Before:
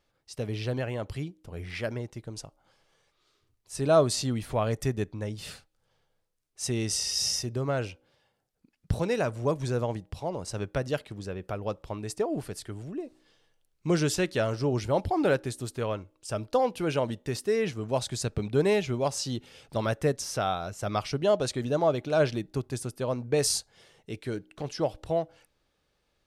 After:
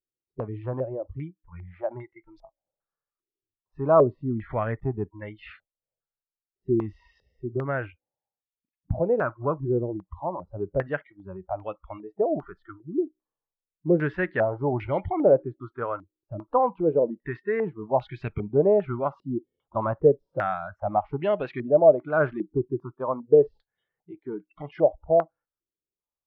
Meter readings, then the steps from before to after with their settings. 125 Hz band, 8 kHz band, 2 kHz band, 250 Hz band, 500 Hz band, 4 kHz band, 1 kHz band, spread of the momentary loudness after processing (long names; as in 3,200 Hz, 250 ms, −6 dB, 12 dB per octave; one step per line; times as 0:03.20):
−1.0 dB, below −40 dB, +1.5 dB, +1.5 dB, +5.0 dB, below −20 dB, +4.0 dB, 18 LU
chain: noise reduction from a noise print of the clip's start 28 dB
high-frequency loss of the air 370 metres
low-pass on a step sequencer 2.5 Hz 370–2,300 Hz